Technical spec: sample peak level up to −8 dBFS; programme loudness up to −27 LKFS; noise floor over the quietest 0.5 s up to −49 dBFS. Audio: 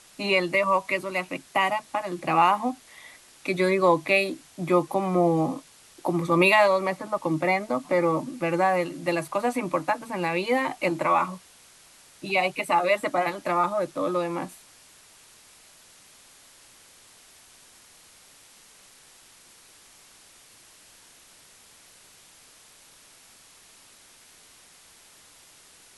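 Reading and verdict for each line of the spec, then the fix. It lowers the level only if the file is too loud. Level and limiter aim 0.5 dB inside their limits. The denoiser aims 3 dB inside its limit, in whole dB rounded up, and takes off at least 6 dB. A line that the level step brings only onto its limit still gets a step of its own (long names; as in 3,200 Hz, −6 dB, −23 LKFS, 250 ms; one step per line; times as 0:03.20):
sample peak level −7.0 dBFS: out of spec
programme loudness −24.5 LKFS: out of spec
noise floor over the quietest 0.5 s −54 dBFS: in spec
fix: level −3 dB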